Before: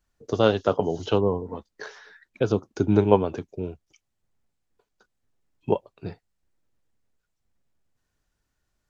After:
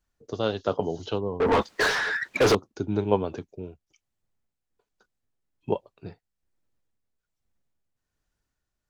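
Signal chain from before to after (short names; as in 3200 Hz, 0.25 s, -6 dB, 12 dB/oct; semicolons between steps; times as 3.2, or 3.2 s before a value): dynamic EQ 4200 Hz, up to +6 dB, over -53 dBFS, Q 2.4; 1.4–2.55 overdrive pedal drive 42 dB, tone 2500 Hz, clips at -8 dBFS; tremolo 1.2 Hz, depth 41%; gain -3 dB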